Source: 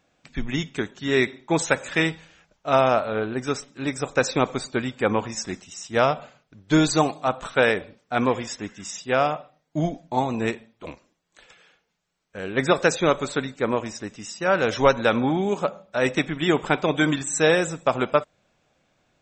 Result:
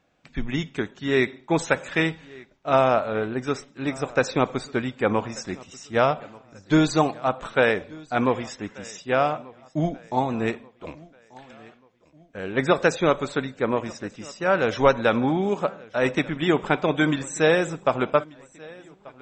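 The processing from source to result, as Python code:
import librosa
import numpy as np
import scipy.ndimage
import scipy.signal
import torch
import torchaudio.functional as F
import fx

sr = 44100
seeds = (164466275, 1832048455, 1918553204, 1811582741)

p1 = fx.high_shelf(x, sr, hz=5600.0, db=-10.5)
y = p1 + fx.echo_feedback(p1, sr, ms=1186, feedback_pct=45, wet_db=-23, dry=0)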